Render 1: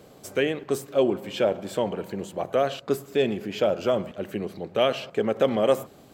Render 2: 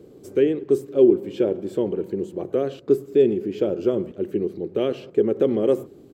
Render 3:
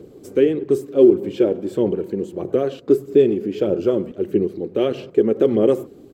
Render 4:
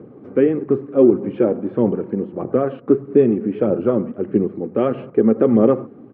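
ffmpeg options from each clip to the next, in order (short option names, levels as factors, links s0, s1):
-af "firequalizer=gain_entry='entry(220,0);entry(360,10);entry(640,-11)':delay=0.05:min_phase=1,volume=1.19"
-af "aphaser=in_gain=1:out_gain=1:delay=4.3:decay=0.32:speed=1.6:type=sinusoidal,volume=1.41"
-af "highpass=110,equalizer=f=120:t=q:w=4:g=6,equalizer=f=230:t=q:w=4:g=7,equalizer=f=380:t=q:w=4:g=-5,equalizer=f=820:t=q:w=4:g=4,equalizer=f=1200:t=q:w=4:g=7,lowpass=f=2100:w=0.5412,lowpass=f=2100:w=1.3066,volume=1.26"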